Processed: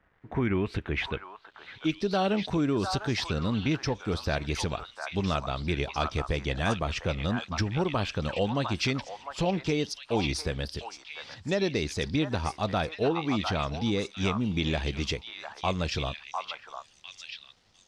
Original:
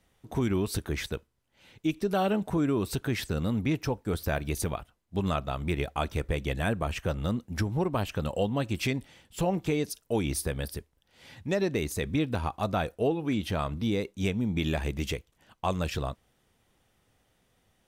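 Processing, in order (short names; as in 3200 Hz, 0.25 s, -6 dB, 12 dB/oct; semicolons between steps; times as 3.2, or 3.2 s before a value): delay with a stepping band-pass 0.702 s, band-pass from 1100 Hz, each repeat 1.4 oct, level -1 dB; bit-crush 11-bit; low-pass sweep 1600 Hz -> 5000 Hz, 0.03–2.1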